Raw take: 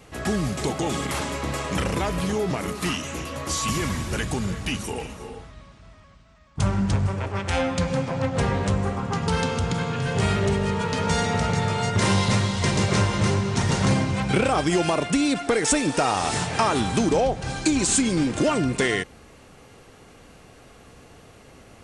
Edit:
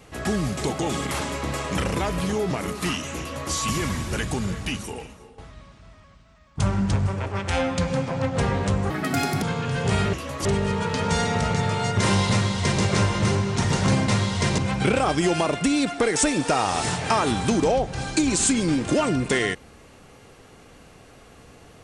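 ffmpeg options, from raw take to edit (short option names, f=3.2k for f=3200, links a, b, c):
-filter_complex "[0:a]asplit=8[a][b][c][d][e][f][g][h];[a]atrim=end=5.38,asetpts=PTS-STARTPTS,afade=t=out:st=4.6:d=0.78:silence=0.188365[i];[b]atrim=start=5.38:end=8.904,asetpts=PTS-STARTPTS,afade=t=in:d=0.004:c=hsin:silence=0.188365[j];[c]atrim=start=8.9:end=9.73,asetpts=PTS-STARTPTS,asetrate=70119,aresample=44100[k];[d]atrim=start=9.726:end=10.442[l];[e]atrim=start=3.198:end=3.522[m];[f]atrim=start=10.438:end=14.072[n];[g]atrim=start=12.298:end=12.802[o];[h]atrim=start=14.068[p];[i][j]concat=n=2:v=0:a=1[q];[q][k]acrossfade=d=0.004:c1=hsin:c2=hsin[r];[r][l]acrossfade=d=0.004:c1=hsin:c2=hsin[s];[s][m]acrossfade=d=0.004:c1=hsin:c2=hsin[t];[t][n]acrossfade=d=0.004:c1=hsin:c2=hsin[u];[u][o]acrossfade=d=0.004:c1=hsin:c2=hsin[v];[v][p]acrossfade=d=0.004:c1=hsin:c2=hsin"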